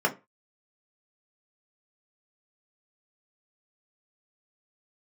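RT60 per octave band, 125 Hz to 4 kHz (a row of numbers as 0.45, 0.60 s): 0.30, 0.25, 0.25, 0.25, 0.25, 0.20 s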